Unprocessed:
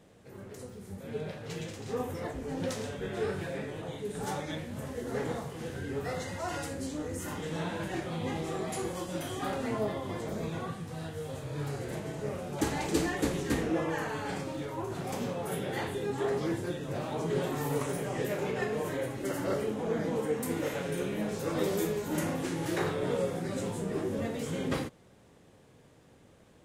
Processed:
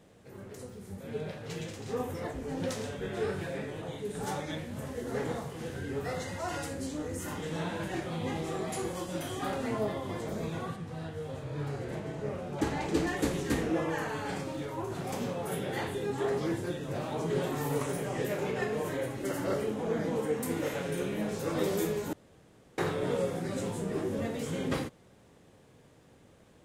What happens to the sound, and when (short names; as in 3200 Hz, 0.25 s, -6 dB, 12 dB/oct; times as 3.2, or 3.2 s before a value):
10.76–13.07 LPF 3300 Hz 6 dB/oct
22.13–22.78 room tone